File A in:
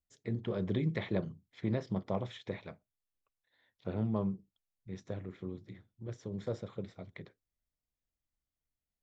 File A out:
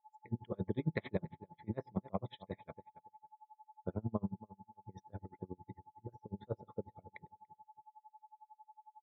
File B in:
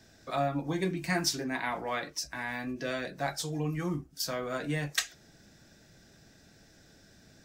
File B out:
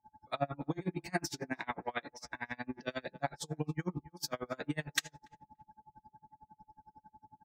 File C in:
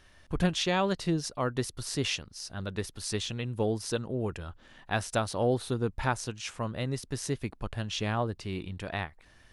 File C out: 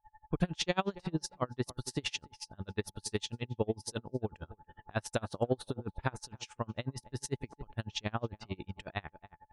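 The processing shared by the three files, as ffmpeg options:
-filter_complex "[0:a]aeval=exprs='val(0)+0.00251*sin(2*PI*860*n/s)':channel_layout=same,afftdn=noise_reduction=33:noise_floor=-52,asplit=2[link_01][link_02];[link_02]adelay=287,lowpass=frequency=1700:poles=1,volume=-17.5dB,asplit=2[link_03][link_04];[link_04]adelay=287,lowpass=frequency=1700:poles=1,volume=0.23[link_05];[link_01][link_03][link_05]amix=inputs=3:normalize=0,aeval=exprs='val(0)*pow(10,-34*(0.5-0.5*cos(2*PI*11*n/s))/20)':channel_layout=same,volume=1dB"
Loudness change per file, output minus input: −5.0, −6.0, −5.5 LU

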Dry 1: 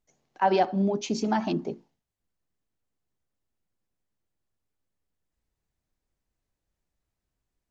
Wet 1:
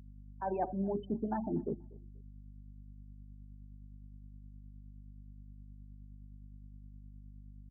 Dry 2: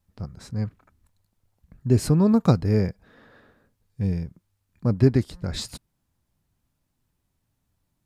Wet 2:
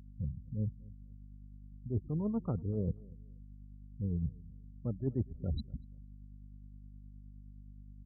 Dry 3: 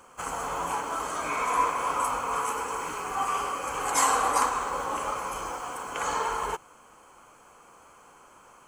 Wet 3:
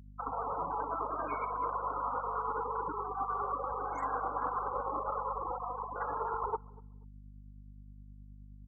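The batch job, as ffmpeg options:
-filter_complex "[0:a]lowpass=frequency=1400:poles=1,afftfilt=real='re*gte(hypot(re,im),0.0447)':imag='im*gte(hypot(re,im),0.0447)':win_size=1024:overlap=0.75,highpass=42,equalizer=frequency=68:width=3.3:gain=4,areverse,acompressor=threshold=-34dB:ratio=12,areverse,aeval=exprs='val(0)+0.00224*(sin(2*PI*50*n/s)+sin(2*PI*2*50*n/s)/2+sin(2*PI*3*50*n/s)/3+sin(2*PI*4*50*n/s)/4+sin(2*PI*5*50*n/s)/5)':channel_layout=same,tremolo=f=9.6:d=0.31,asplit=2[link_01][link_02];[link_02]adelay=241,lowpass=frequency=900:poles=1,volume=-22dB,asplit=2[link_03][link_04];[link_04]adelay=241,lowpass=frequency=900:poles=1,volume=0.28[link_05];[link_03][link_05]amix=inputs=2:normalize=0[link_06];[link_01][link_06]amix=inputs=2:normalize=0,volume=4dB"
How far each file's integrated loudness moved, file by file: −10.5, −14.5, −7.0 LU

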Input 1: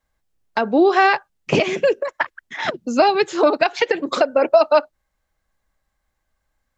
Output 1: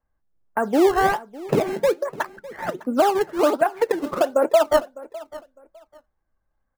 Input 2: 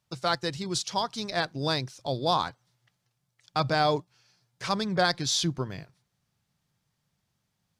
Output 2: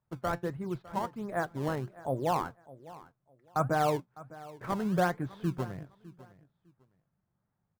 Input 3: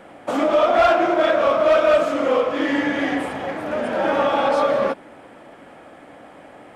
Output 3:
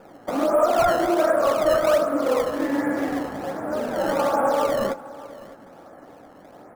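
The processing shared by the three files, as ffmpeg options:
-filter_complex "[0:a]lowpass=frequency=1600:width=0.5412,lowpass=frequency=1600:width=1.3066,asplit=2[link_01][link_02];[link_02]acrusher=samples=21:mix=1:aa=0.000001:lfo=1:lforange=33.6:lforate=1.3,volume=-8dB[link_03];[link_01][link_03]amix=inputs=2:normalize=0,flanger=delay=2.2:depth=3.6:regen=80:speed=1.3:shape=sinusoidal,aecho=1:1:605|1210:0.112|0.0247"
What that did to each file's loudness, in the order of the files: −3.0, −4.5, −3.0 LU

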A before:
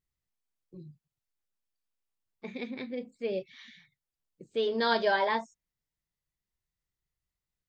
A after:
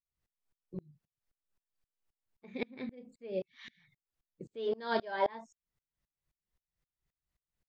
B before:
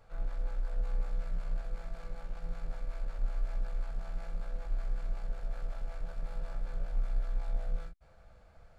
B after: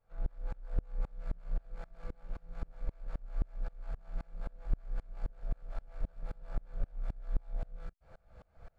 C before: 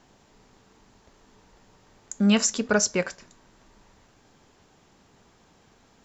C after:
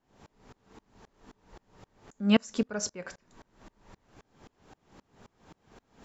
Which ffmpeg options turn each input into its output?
-filter_complex "[0:a]highshelf=frequency=2900:gain=-8,asplit=2[link_01][link_02];[link_02]acompressor=threshold=-43dB:ratio=6,volume=3dB[link_03];[link_01][link_03]amix=inputs=2:normalize=0,aeval=exprs='val(0)*pow(10,-30*if(lt(mod(-3.8*n/s,1),2*abs(-3.8)/1000),1-mod(-3.8*n/s,1)/(2*abs(-3.8)/1000),(mod(-3.8*n/s,1)-2*abs(-3.8)/1000)/(1-2*abs(-3.8)/1000))/20)':channel_layout=same,volume=2dB"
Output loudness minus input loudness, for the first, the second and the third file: −7.0, −3.5, −6.5 LU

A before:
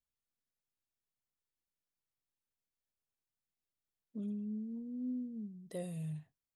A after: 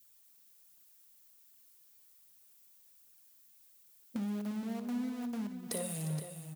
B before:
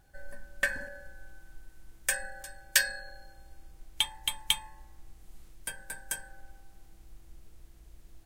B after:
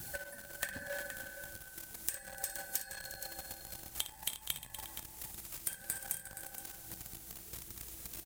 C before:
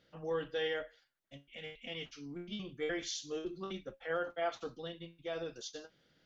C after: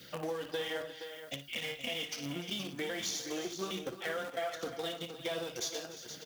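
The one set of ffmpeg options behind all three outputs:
-filter_complex "[0:a]aphaser=in_gain=1:out_gain=1:delay=4.6:decay=0.42:speed=1.3:type=triangular,aemphasis=mode=production:type=75kf,acrossover=split=200[link_01][link_02];[link_02]acompressor=threshold=-34dB:ratio=6[link_03];[link_01][link_03]amix=inputs=2:normalize=0,asplit=2[link_04][link_05];[link_05]acrusher=bits=4:dc=4:mix=0:aa=0.000001,volume=-4dB[link_06];[link_04][link_06]amix=inputs=2:normalize=0,adynamicequalizer=threshold=0.00126:dfrequency=690:dqfactor=4.1:tfrequency=690:tqfactor=4.1:attack=5:release=100:ratio=0.375:range=2.5:mode=boostabove:tftype=bell,acompressor=threshold=-52dB:ratio=4,highpass=100,aecho=1:1:58|297|355|471:0.251|0.141|0.2|0.299,volume=14dB"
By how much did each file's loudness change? +4.0, −9.5, +2.0 LU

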